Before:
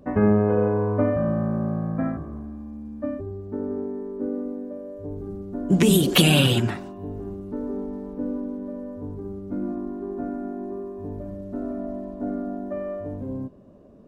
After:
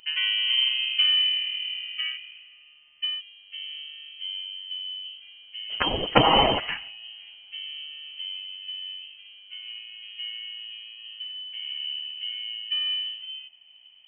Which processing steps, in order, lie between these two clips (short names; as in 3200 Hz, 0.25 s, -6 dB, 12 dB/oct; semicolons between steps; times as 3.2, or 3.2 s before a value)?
steep high-pass 480 Hz 72 dB/oct; inverted band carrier 3600 Hz; gain +4 dB